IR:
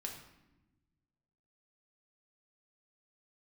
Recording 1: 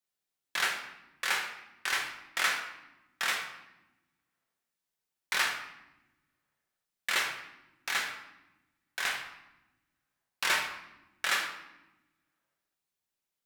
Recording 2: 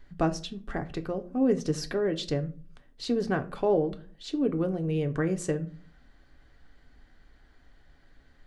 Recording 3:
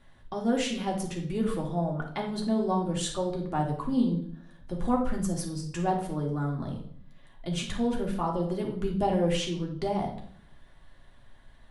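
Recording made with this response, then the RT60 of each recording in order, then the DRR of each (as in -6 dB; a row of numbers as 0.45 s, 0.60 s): 1; 1.0 s, 0.40 s, 0.60 s; 0.0 dB, 6.0 dB, -1.0 dB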